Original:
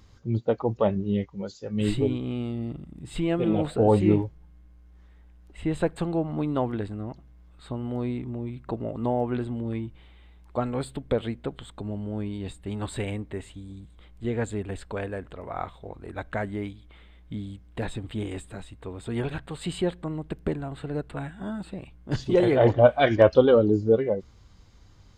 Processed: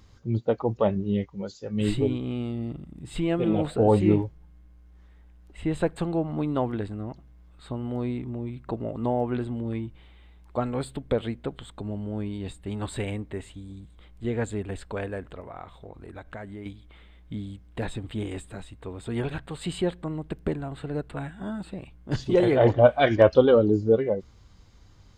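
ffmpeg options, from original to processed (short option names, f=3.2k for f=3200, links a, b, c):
-filter_complex "[0:a]asettb=1/sr,asplit=3[a][b][c];[a]atrim=end=15.404[d];[b]atrim=start=15.4:end=16.66,asetpts=PTS-STARTPTS,afade=t=in:d=0.004:c=qsin,afade=t=out:st=1.256:d=0.004:c=qsin,acompressor=threshold=-39dB:ratio=2.5:attack=3.2:release=140:knee=1:detection=peak[e];[c]atrim=start=16.656[f];[d][e]acrossfade=d=0.004:c1=hsin:c2=qsin[g];[g][f]acrossfade=d=0.004:c1=qsin:c2=hsin"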